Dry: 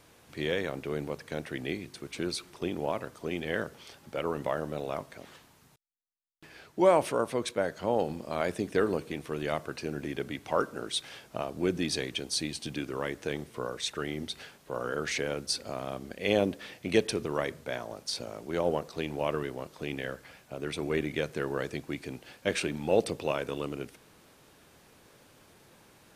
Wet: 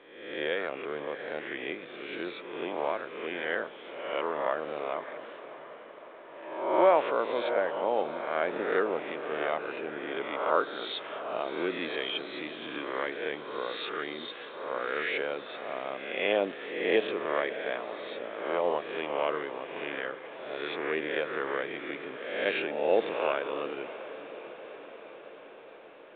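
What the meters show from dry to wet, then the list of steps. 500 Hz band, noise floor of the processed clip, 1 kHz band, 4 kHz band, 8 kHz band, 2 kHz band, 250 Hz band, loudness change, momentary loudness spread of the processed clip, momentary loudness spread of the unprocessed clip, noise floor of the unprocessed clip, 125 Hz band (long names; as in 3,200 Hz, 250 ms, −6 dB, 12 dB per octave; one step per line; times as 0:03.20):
+1.5 dB, −48 dBFS, +4.0 dB, −2.0 dB, below −40 dB, +4.0 dB, −4.0 dB, +0.5 dB, 15 LU, 11 LU, −60 dBFS, −15.0 dB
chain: peak hold with a rise ahead of every peak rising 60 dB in 0.95 s
band-pass filter 410–3,100 Hz
on a send: feedback delay with all-pass diffusion 653 ms, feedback 65%, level −13.5 dB
on the sum: mu-law 64 kbit/s 8,000 Hz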